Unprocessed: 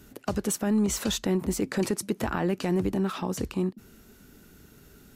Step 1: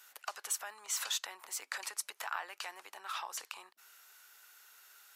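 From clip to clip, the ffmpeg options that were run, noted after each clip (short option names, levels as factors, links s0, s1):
-af "acompressor=threshold=0.0316:ratio=2.5,highpass=f=890:w=0.5412,highpass=f=890:w=1.3066"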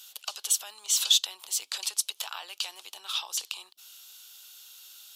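-af "highshelf=f=2500:t=q:w=3:g=9.5"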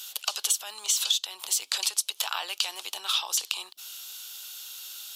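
-af "acompressor=threshold=0.0282:ratio=8,volume=2.66"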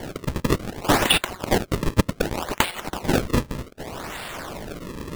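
-filter_complex "[0:a]acrossover=split=350|3000[s0][s1][s2];[s1]alimiter=level_in=1.19:limit=0.0631:level=0:latency=1:release=446,volume=0.841[s3];[s0][s3][s2]amix=inputs=3:normalize=0,acrusher=samples=34:mix=1:aa=0.000001:lfo=1:lforange=54.4:lforate=0.65,volume=2.51"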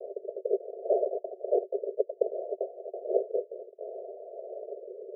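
-af "asuperpass=centerf=510:order=20:qfactor=1.6"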